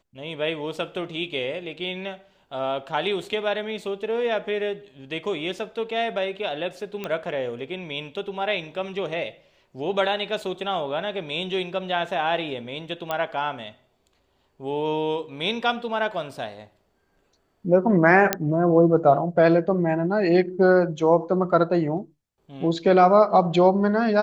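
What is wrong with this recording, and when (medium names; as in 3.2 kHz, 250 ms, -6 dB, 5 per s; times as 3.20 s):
7.04 s: pop -16 dBFS
13.11 s: pop -13 dBFS
18.33 s: pop -2 dBFS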